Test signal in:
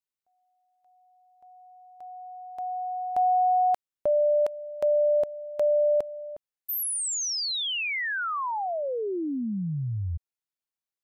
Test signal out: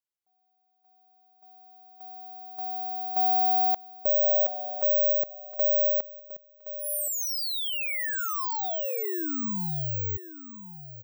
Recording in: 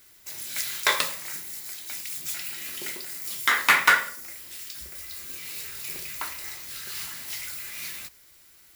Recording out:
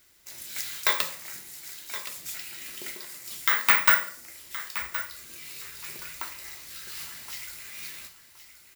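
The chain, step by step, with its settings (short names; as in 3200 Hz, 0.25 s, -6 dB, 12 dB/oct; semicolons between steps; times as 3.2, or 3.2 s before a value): on a send: feedback echo 1.07 s, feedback 21%, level -13 dB; on the sum: careless resampling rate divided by 2×, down filtered, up zero stuff; gain -4 dB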